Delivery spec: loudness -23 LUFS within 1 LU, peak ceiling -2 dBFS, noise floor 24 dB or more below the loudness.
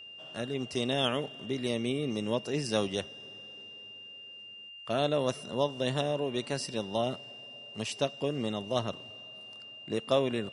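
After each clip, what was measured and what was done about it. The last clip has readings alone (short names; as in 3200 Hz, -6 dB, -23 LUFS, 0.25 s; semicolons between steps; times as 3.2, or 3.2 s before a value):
steady tone 2800 Hz; tone level -45 dBFS; loudness -32.0 LUFS; peak -13.0 dBFS; loudness target -23.0 LUFS
-> notch 2800 Hz, Q 30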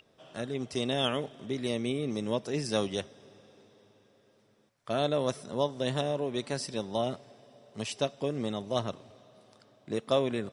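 steady tone none; loudness -32.5 LUFS; peak -13.5 dBFS; loudness target -23.0 LUFS
-> gain +9.5 dB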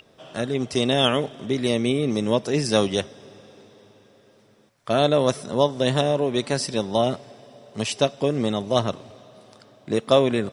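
loudness -23.0 LUFS; peak -4.0 dBFS; noise floor -57 dBFS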